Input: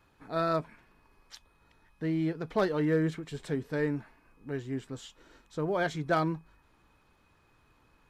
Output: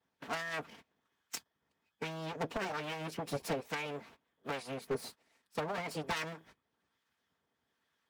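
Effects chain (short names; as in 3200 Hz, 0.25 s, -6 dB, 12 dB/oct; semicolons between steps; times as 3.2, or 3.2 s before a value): minimum comb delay 4.4 ms; gate -53 dBFS, range -18 dB; HPF 87 Hz 24 dB/oct; limiter -23 dBFS, peak gain reduction 9 dB; compressor 6:1, threshold -38 dBFS, peak gain reduction 10.5 dB; harmonic-percussive split harmonic -10 dB; formant shift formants +5 st; harmonic tremolo 1.2 Hz, depth 50%, crossover 1000 Hz; wavefolder -38 dBFS; gain +11.5 dB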